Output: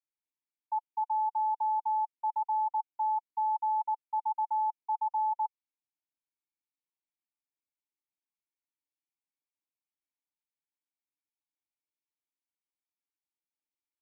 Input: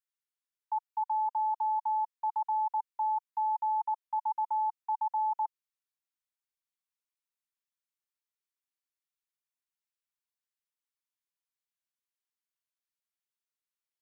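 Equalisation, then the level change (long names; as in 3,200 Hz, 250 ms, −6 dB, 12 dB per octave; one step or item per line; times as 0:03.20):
formant filter u
+6.5 dB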